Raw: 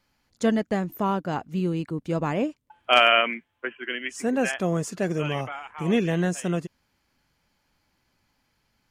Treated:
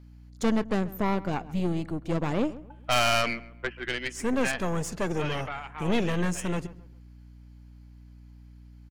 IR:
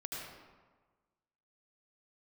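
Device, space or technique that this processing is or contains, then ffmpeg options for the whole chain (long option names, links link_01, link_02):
valve amplifier with mains hum: -filter_complex "[0:a]highpass=frequency=40:width=0.5412,highpass=frequency=40:width=1.3066,aeval=exprs='(tanh(14.1*val(0)+0.7)-tanh(0.7))/14.1':channel_layout=same,aeval=exprs='val(0)+0.00282*(sin(2*PI*60*n/s)+sin(2*PI*2*60*n/s)/2+sin(2*PI*3*60*n/s)/3+sin(2*PI*4*60*n/s)/4+sin(2*PI*5*60*n/s)/5)':channel_layout=same,asplit=2[link_01][link_02];[link_02]adelay=135,lowpass=frequency=1900:poles=1,volume=-17dB,asplit=2[link_03][link_04];[link_04]adelay=135,lowpass=frequency=1900:poles=1,volume=0.35,asplit=2[link_05][link_06];[link_06]adelay=135,lowpass=frequency=1900:poles=1,volume=0.35[link_07];[link_01][link_03][link_05][link_07]amix=inputs=4:normalize=0,volume=3dB"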